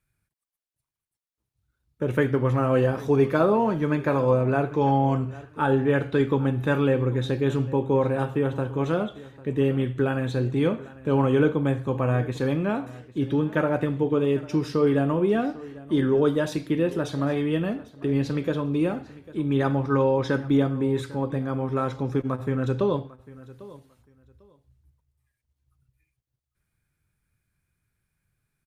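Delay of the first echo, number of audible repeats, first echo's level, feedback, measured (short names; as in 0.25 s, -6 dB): 0.798 s, 2, -19.5 dB, 20%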